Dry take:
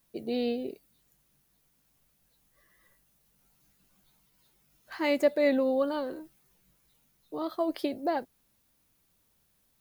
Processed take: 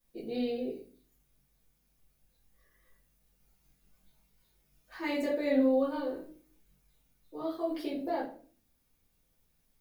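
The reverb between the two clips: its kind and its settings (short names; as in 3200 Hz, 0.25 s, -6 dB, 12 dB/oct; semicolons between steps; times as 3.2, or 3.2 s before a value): shoebox room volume 32 m³, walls mixed, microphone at 1.9 m; gain -14.5 dB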